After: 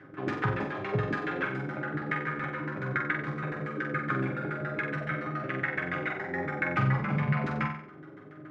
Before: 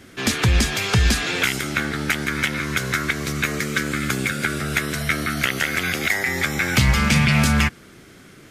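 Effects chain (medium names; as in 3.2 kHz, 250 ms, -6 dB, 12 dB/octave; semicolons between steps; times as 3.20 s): high-pass 110 Hz 24 dB/octave; in parallel at +2.5 dB: compression, threshold -28 dBFS, peak gain reduction 14 dB; on the sum: chord resonator G#2 sus4, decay 0.23 s; LFO low-pass saw down 7.1 Hz 330–1800 Hz; comb of notches 230 Hz; on a send: flutter echo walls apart 7.8 m, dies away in 0.55 s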